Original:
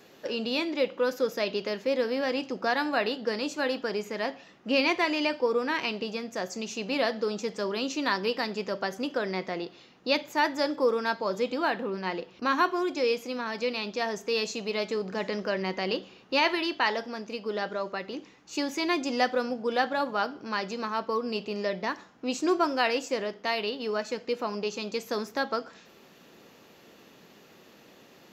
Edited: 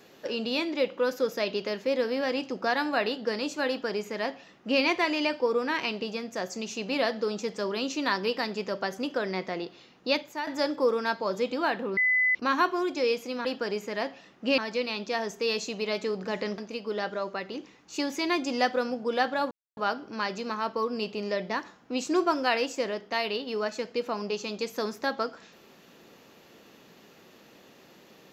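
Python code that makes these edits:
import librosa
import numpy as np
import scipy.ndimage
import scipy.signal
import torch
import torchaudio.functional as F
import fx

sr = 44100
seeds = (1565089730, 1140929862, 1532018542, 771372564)

y = fx.edit(x, sr, fx.duplicate(start_s=3.68, length_s=1.13, to_s=13.45),
    fx.fade_out_to(start_s=10.1, length_s=0.37, floor_db=-12.0),
    fx.bleep(start_s=11.97, length_s=0.38, hz=2010.0, db=-20.5),
    fx.cut(start_s=15.45, length_s=1.72),
    fx.insert_silence(at_s=20.1, length_s=0.26), tone=tone)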